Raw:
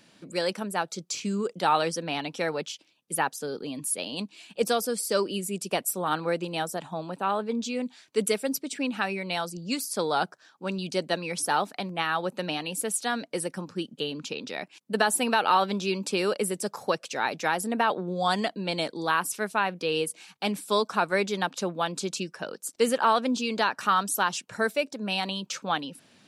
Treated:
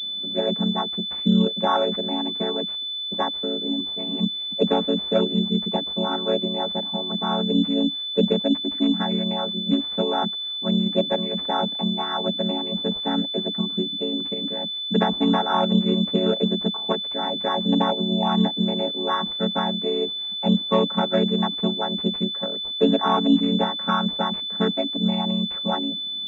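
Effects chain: chord vocoder minor triad, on F#3; pulse-width modulation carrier 3500 Hz; gain +6 dB

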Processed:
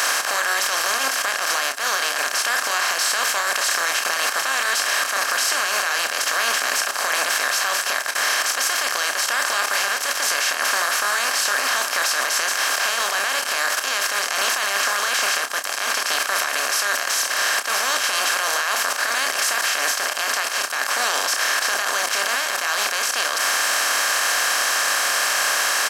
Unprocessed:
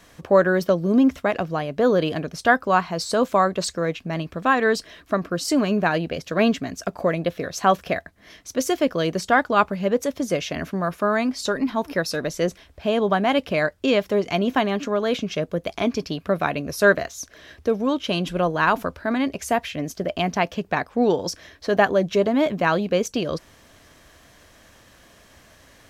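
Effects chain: per-bin compression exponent 0.2; HPF 1300 Hz 12 dB/oct; high shelf 4800 Hz +11.5 dB; level quantiser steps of 21 dB; limiter -10 dBFS, peak gain reduction 11 dB; doubler 30 ms -8 dB

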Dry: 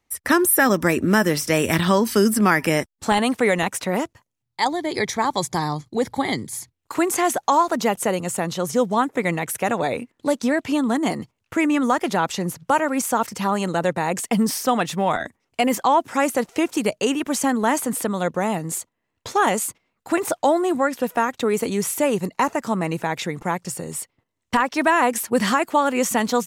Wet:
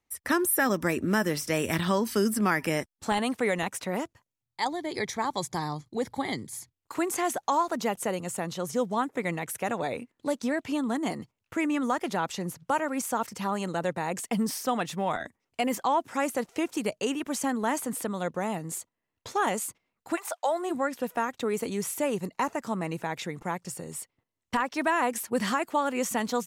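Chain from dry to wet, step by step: 20.15–20.69 HPF 830 Hz -> 340 Hz 24 dB/oct; gain -8 dB

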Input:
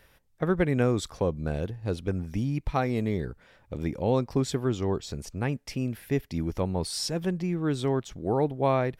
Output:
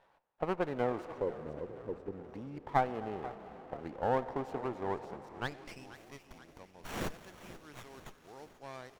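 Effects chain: 1.18–2.14 formant sharpening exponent 3; on a send at -13 dB: reverb RT60 5.3 s, pre-delay 73 ms; on the sum: band-pass sweep 870 Hz -> 5800 Hz, 5.24–5.98; bell 3900 Hz -7.5 dB 0.41 oct; frequency-shifting echo 0.484 s, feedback 57%, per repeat -40 Hz, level -15.5 dB; running maximum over 9 samples; gain +3 dB

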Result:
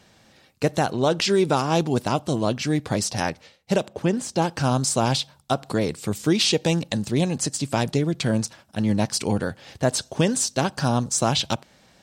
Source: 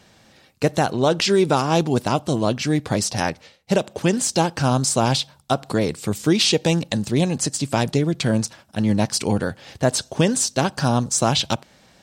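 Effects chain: 3.88–4.42 high shelf 2500 Hz -9.5 dB; gain -2.5 dB

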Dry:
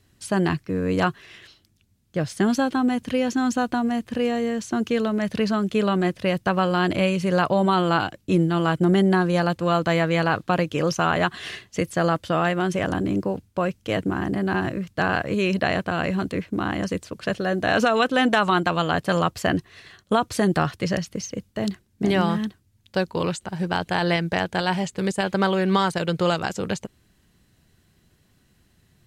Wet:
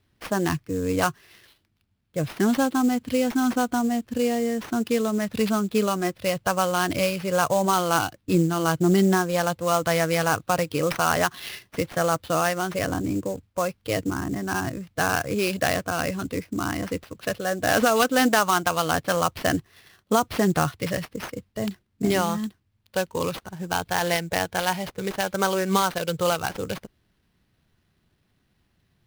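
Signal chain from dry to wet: spectral noise reduction 7 dB; sample-rate reducer 7500 Hz, jitter 20%

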